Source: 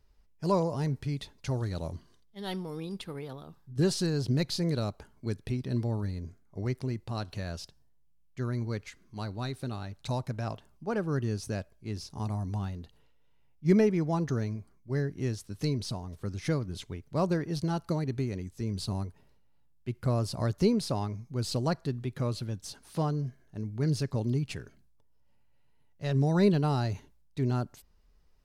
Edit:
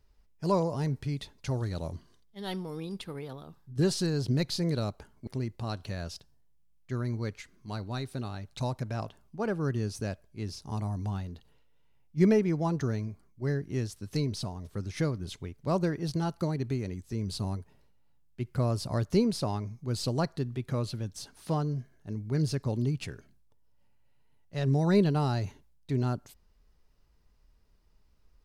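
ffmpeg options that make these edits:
-filter_complex "[0:a]asplit=2[a][b];[a]atrim=end=5.272[c];[b]atrim=start=6.748[d];[c][d]acrossfade=d=0.004:c1=hsin:c2=hsin"

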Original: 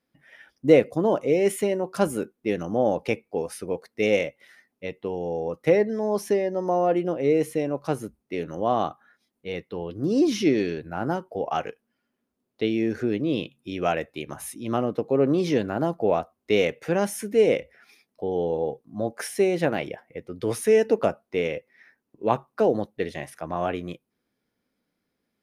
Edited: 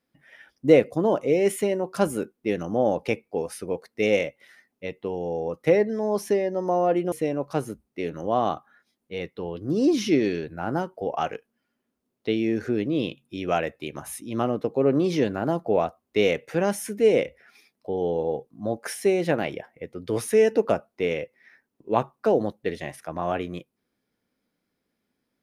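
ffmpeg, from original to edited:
-filter_complex "[0:a]asplit=2[a][b];[a]atrim=end=7.122[c];[b]atrim=start=7.458[d];[c][d]acrossfade=d=0.004:c1=hsin:c2=hsin"

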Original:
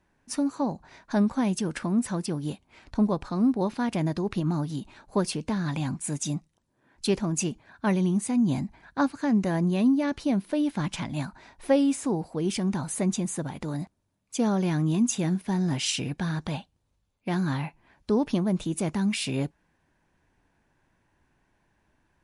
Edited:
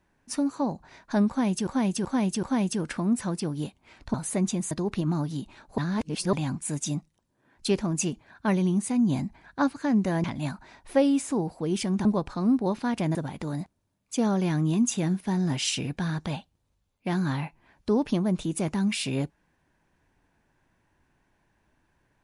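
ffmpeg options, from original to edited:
-filter_complex "[0:a]asplit=11[a][b][c][d][e][f][g][h][i][j][k];[a]atrim=end=1.672[l];[b]atrim=start=1.288:end=1.672[m];[c]atrim=start=1.288:end=1.672[n];[d]atrim=start=1.288:end=3.002[o];[e]atrim=start=12.788:end=13.362[p];[f]atrim=start=4.098:end=5.172[q];[g]atrim=start=5.168:end=5.722,asetpts=PTS-STARTPTS,areverse[r];[h]atrim=start=5.718:end=9.632[s];[i]atrim=start=10.978:end=12.792[t];[j]atrim=start=2.998:end=4.102[u];[k]atrim=start=13.358[v];[l][m]acrossfade=d=0.004:c1=hsin:c2=hsin[w];[w][n]acrossfade=d=0.004:c1=hsin:c2=hsin[x];[x][o]acrossfade=d=0.004:c1=hsin:c2=hsin[y];[y][p]acrossfade=d=0.004:c1=hsin:c2=hsin[z];[z][q]acrossfade=d=0.004:c1=hsin:c2=hsin[aa];[aa][r]acrossfade=d=0.004:c1=hsin:c2=hsin[ab];[ab][s]acrossfade=d=0.004:c1=hsin:c2=hsin[ac];[ac][t]acrossfade=d=0.004:c1=hsin:c2=hsin[ad];[ad][u]acrossfade=d=0.004:c1=hsin:c2=hsin[ae];[ae][v]acrossfade=d=0.004:c1=hsin:c2=hsin"

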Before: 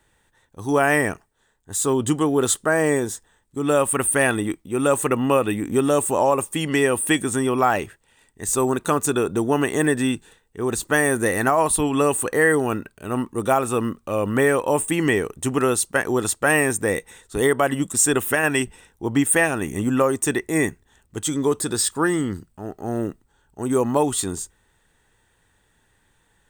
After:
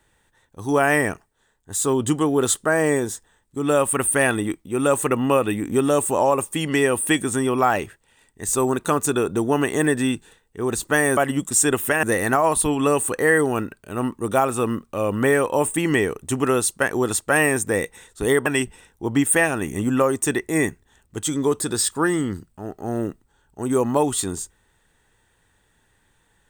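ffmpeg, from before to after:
-filter_complex "[0:a]asplit=4[a][b][c][d];[a]atrim=end=11.172[e];[b]atrim=start=17.598:end=18.462[f];[c]atrim=start=11.168:end=17.602[g];[d]atrim=start=18.458[h];[e][f]acrossfade=d=0.004:c1=hsin:c2=hsin[i];[i][g]acrossfade=d=0.004:c1=hsin:c2=hsin[j];[j][h]acrossfade=d=0.004:c1=hsin:c2=hsin"

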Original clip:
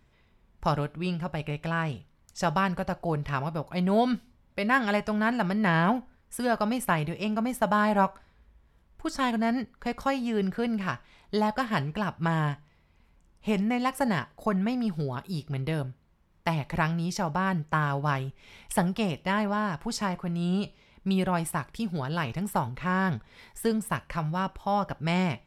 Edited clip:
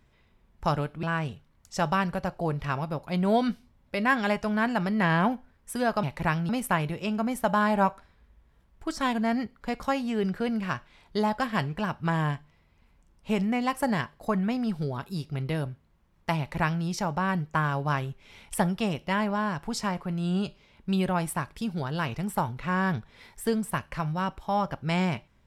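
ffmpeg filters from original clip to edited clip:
-filter_complex "[0:a]asplit=4[a][b][c][d];[a]atrim=end=1.032[e];[b]atrim=start=1.668:end=6.672[f];[c]atrim=start=16.558:end=17.022[g];[d]atrim=start=6.668[h];[e][f]acrossfade=d=0.004:c1=hsin:c2=hsin[i];[i][g]acrossfade=d=0.004:c1=hsin:c2=hsin[j];[j][h]acrossfade=d=0.004:c1=hsin:c2=hsin"

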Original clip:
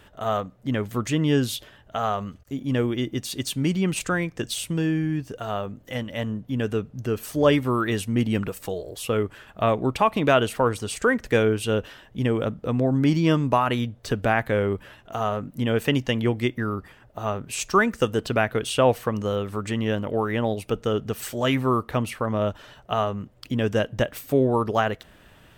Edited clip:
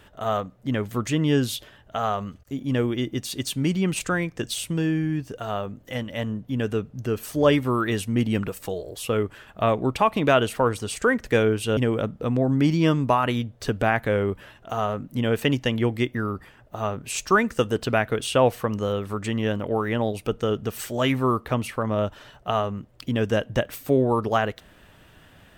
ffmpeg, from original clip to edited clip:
-filter_complex "[0:a]asplit=2[a][b];[a]atrim=end=11.772[c];[b]atrim=start=12.198[d];[c][d]acrossfade=d=0.004:c1=hsin:c2=hsin"

